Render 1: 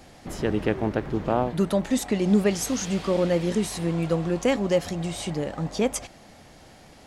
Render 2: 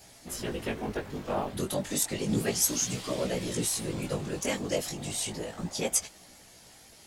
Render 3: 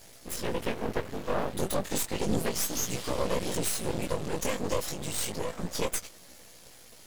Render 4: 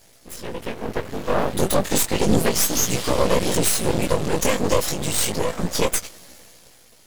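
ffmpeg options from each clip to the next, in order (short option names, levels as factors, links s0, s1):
-af "afftfilt=real='hypot(re,im)*cos(2*PI*random(0))':imag='hypot(re,im)*sin(2*PI*random(1))':win_size=512:overlap=0.75,flanger=delay=16:depth=4.8:speed=0.32,crystalizer=i=4.5:c=0"
-af "equalizer=f=500:t=o:w=0.33:g=7,equalizer=f=800:t=o:w=0.33:g=-4,equalizer=f=12500:t=o:w=0.33:g=4,alimiter=limit=0.106:level=0:latency=1:release=129,aeval=exprs='max(val(0),0)':c=same,volume=1.68"
-af "dynaudnorm=f=200:g=11:m=4.22,volume=0.891"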